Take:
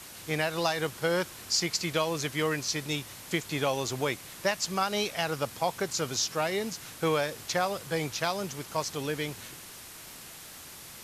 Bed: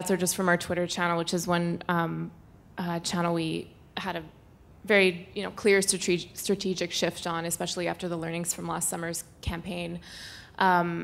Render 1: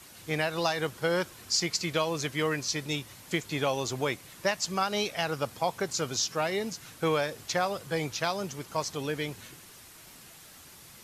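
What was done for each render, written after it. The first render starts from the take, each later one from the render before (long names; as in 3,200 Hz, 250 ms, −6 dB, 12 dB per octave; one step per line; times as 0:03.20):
broadband denoise 6 dB, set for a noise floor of −46 dBFS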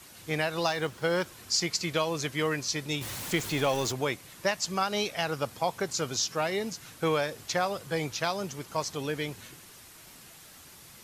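0:00.67–0:01.26: running median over 3 samples
0:03.01–0:03.92: converter with a step at zero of −33.5 dBFS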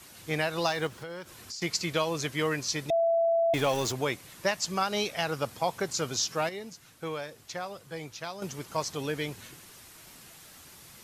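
0:00.87–0:01.62: downward compressor 5 to 1, threshold −38 dBFS
0:02.90–0:03.54: beep over 668 Hz −21.5 dBFS
0:06.49–0:08.42: clip gain −8.5 dB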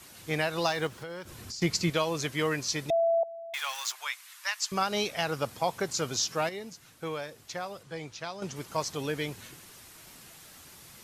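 0:01.25–0:01.90: low-shelf EQ 300 Hz +10.5 dB
0:03.23–0:04.72: inverse Chebyshev high-pass filter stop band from 180 Hz, stop band 80 dB
0:07.83–0:08.56: low-pass filter 7,900 Hz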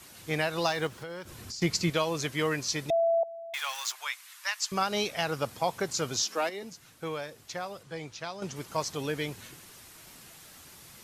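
0:06.22–0:06.63: Butterworth high-pass 200 Hz 48 dB per octave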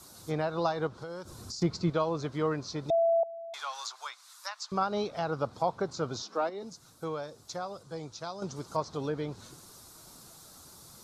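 treble cut that deepens with the level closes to 2,800 Hz, closed at −28 dBFS
flat-topped bell 2,300 Hz −13 dB 1.1 octaves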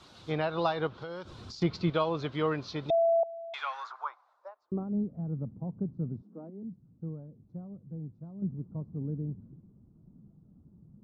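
low-pass filter sweep 3,100 Hz → 200 Hz, 0:03.49–0:04.98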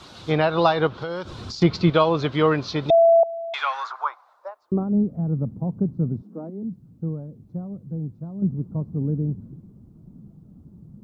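level +10.5 dB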